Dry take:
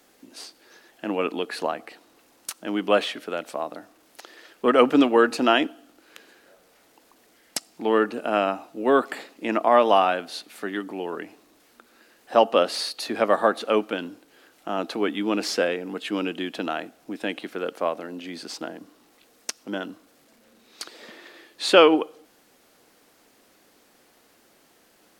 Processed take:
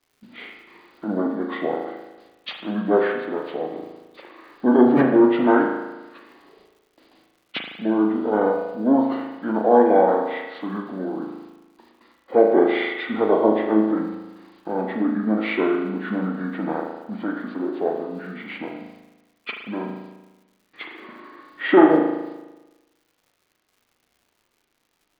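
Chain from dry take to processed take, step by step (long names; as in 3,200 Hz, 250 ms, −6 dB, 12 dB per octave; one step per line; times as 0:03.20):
hearing-aid frequency compression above 1,000 Hz 1.5 to 1
noise gate with hold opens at −46 dBFS
surface crackle 200 per second −52 dBFS
formants moved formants −5 semitones
spring reverb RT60 1.1 s, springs 37 ms, chirp 65 ms, DRR 2 dB
level +1.5 dB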